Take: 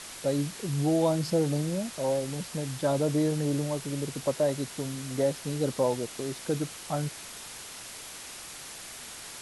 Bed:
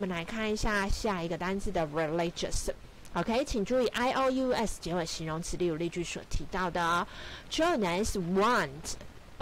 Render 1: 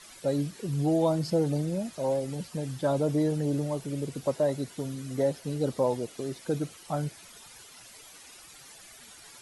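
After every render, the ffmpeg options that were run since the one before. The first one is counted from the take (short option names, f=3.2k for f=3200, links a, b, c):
-af "afftdn=nr=12:nf=-43"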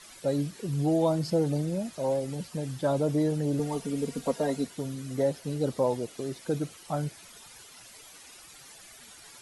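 -filter_complex "[0:a]asettb=1/sr,asplit=3[a][b][c];[a]atrim=end=3.594[d];[b]atrim=start=3.59:end=4.67,asetpts=PTS-STARTPTS,afade=t=in:d=0.004:c=qsin,afade=t=out:st=1.076:d=0.004:c=qsin,aecho=1:1:4.3:0.95,atrim=end_sample=47628[e];[c]atrim=start=4.666[f];[d][e]acrossfade=d=0.004:c1=hsin:c2=qsin[g];[g][f]acrossfade=d=0.004:c1=qsin:c2=hsin"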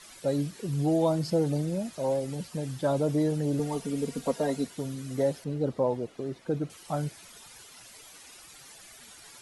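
-filter_complex "[0:a]asettb=1/sr,asplit=3[a][b][c];[a]atrim=end=5.444[d];[b]atrim=start=5.44:end=6.7,asetpts=PTS-STARTPTS,afade=t=in:d=0.004:c=qsin,afade=t=out:st=1.256:d=0.004:c=qsin,lowpass=f=1.6k:p=1[e];[c]atrim=start=6.696[f];[d][e]acrossfade=d=0.004:c1=hsin:c2=qsin[g];[g][f]acrossfade=d=0.004:c1=qsin:c2=hsin"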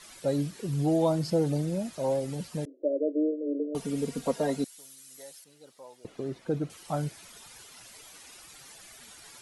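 -filter_complex "[0:a]asettb=1/sr,asplit=3[a][b][c];[a]atrim=end=2.654[d];[b]atrim=start=2.65:end=3.75,asetpts=PTS-STARTPTS,afade=t=in:d=0.004:c=qsin,afade=t=out:st=1.096:d=0.004:c=qsin,asuperpass=centerf=420:order=20:qfactor=1.2[e];[c]atrim=start=3.746[f];[d][e]acrossfade=d=0.004:c1=hsin:c2=qsin[g];[g][f]acrossfade=d=0.004:c1=qsin:c2=hsin,asettb=1/sr,asplit=3[h][i][j];[h]atrim=end=4.644[k];[i]atrim=start=4.64:end=6.05,asetpts=PTS-STARTPTS,afade=t=in:d=0.004:c=qsin,afade=t=out:st=1.406:d=0.004:c=qsin,aderivative[l];[j]atrim=start=6.046[m];[k][l]acrossfade=d=0.004:c1=hsin:c2=qsin[n];[n][m]acrossfade=d=0.004:c1=qsin:c2=hsin"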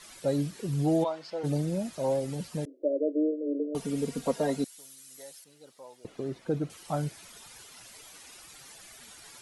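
-filter_complex "[0:a]asplit=3[a][b][c];[a]afade=t=out:st=1.03:d=0.02[d];[b]highpass=760,lowpass=3.5k,afade=t=in:st=1.03:d=0.02,afade=t=out:st=1.43:d=0.02[e];[c]afade=t=in:st=1.43:d=0.02[f];[d][e][f]amix=inputs=3:normalize=0"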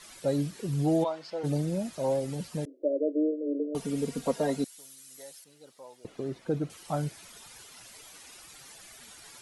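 -af anull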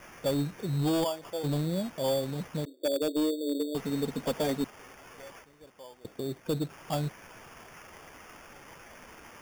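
-af "acrusher=samples=11:mix=1:aa=0.000001,asoftclip=type=hard:threshold=-23dB"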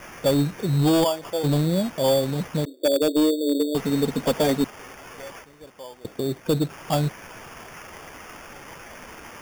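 -af "volume=8.5dB"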